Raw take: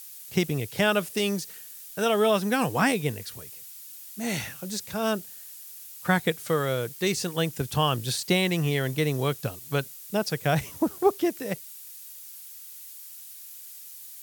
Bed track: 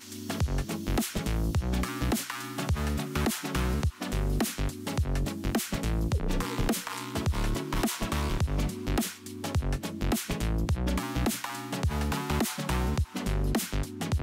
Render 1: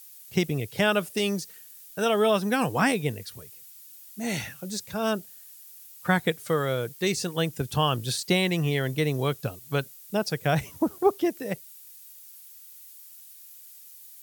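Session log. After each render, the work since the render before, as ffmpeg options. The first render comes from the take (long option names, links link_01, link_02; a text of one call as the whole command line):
ffmpeg -i in.wav -af "afftdn=noise_reduction=6:noise_floor=-44" out.wav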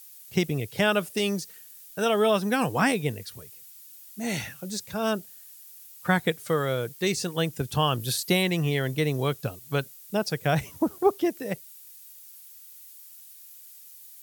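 ffmpeg -i in.wav -filter_complex "[0:a]asettb=1/sr,asplit=3[link_01][link_02][link_03];[link_01]atrim=end=8.004[link_04];[link_02]atrim=start=8:end=8.43,asetpts=PTS-STARTPTS,afade=type=in:duration=0.004:curve=qsin,afade=type=out:start_time=0.426:duration=0.004:curve=qsin,equalizer=frequency=12000:width=2.4:gain=11.5[link_05];[link_03]atrim=start=8.426[link_06];[link_04][link_05]acrossfade=duration=0.004:curve1=hsin:curve2=qsin[link_07];[link_07][link_06]acrossfade=duration=0.004:curve1=qsin:curve2=hsin" out.wav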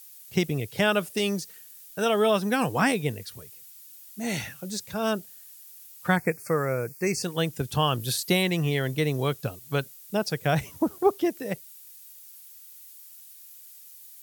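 ffmpeg -i in.wav -filter_complex "[0:a]asplit=3[link_01][link_02][link_03];[link_01]afade=type=out:start_time=6.15:duration=0.02[link_04];[link_02]asuperstop=centerf=3400:order=20:qfactor=2,afade=type=in:start_time=6.15:duration=0.02,afade=type=out:start_time=7.22:duration=0.02[link_05];[link_03]afade=type=in:start_time=7.22:duration=0.02[link_06];[link_04][link_05][link_06]amix=inputs=3:normalize=0" out.wav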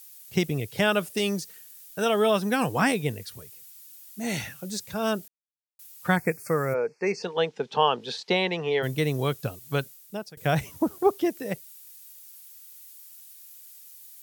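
ffmpeg -i in.wav -filter_complex "[0:a]asplit=3[link_01][link_02][link_03];[link_01]afade=type=out:start_time=6.73:duration=0.02[link_04];[link_02]highpass=frequency=210:width=0.5412,highpass=frequency=210:width=1.3066,equalizer=frequency=310:width_type=q:width=4:gain=-9,equalizer=frequency=450:width_type=q:width=4:gain=8,equalizer=frequency=870:width_type=q:width=4:gain=9,equalizer=frequency=4700:width_type=q:width=4:gain=-3,lowpass=frequency=4800:width=0.5412,lowpass=frequency=4800:width=1.3066,afade=type=in:start_time=6.73:duration=0.02,afade=type=out:start_time=8.82:duration=0.02[link_05];[link_03]afade=type=in:start_time=8.82:duration=0.02[link_06];[link_04][link_05][link_06]amix=inputs=3:normalize=0,asplit=4[link_07][link_08][link_09][link_10];[link_07]atrim=end=5.28,asetpts=PTS-STARTPTS,afade=type=out:start_time=5.276:duration=0.004:curve=hsin[link_11];[link_08]atrim=start=5.28:end=5.79,asetpts=PTS-STARTPTS,volume=0[link_12];[link_09]atrim=start=5.79:end=10.37,asetpts=PTS-STARTPTS,afade=type=in:duration=0.004:curve=hsin,afade=type=out:start_time=4.04:duration=0.54:silence=0.0630957[link_13];[link_10]atrim=start=10.37,asetpts=PTS-STARTPTS,afade=type=in:duration=0.004:curve=hsin:silence=0.0630957[link_14];[link_11][link_12][link_13][link_14]concat=n=4:v=0:a=1" out.wav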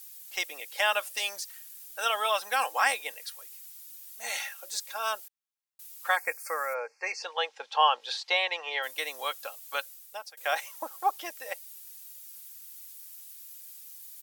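ffmpeg -i in.wav -af "highpass=frequency=690:width=0.5412,highpass=frequency=690:width=1.3066,aecho=1:1:3.7:0.48" out.wav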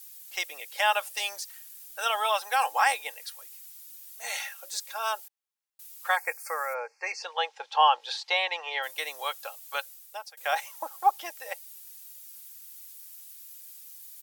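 ffmpeg -i in.wav -af "highpass=380,adynamicequalizer=threshold=0.00562:dfrequency=840:dqfactor=5.6:tfrequency=840:tqfactor=5.6:attack=5:release=100:ratio=0.375:range=3.5:mode=boostabove:tftype=bell" out.wav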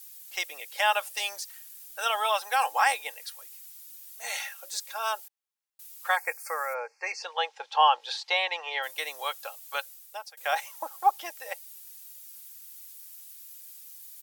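ffmpeg -i in.wav -af anull out.wav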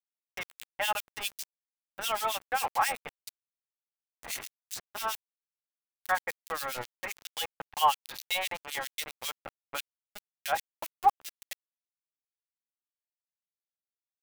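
ffmpeg -i in.wav -filter_complex "[0:a]acrusher=bits=4:mix=0:aa=0.000001,acrossover=split=2200[link_01][link_02];[link_01]aeval=exprs='val(0)*(1-1/2+1/2*cos(2*PI*7.5*n/s))':channel_layout=same[link_03];[link_02]aeval=exprs='val(0)*(1-1/2-1/2*cos(2*PI*7.5*n/s))':channel_layout=same[link_04];[link_03][link_04]amix=inputs=2:normalize=0" out.wav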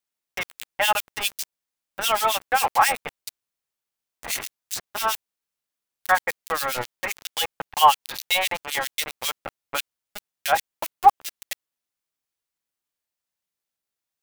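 ffmpeg -i in.wav -af "volume=9dB" out.wav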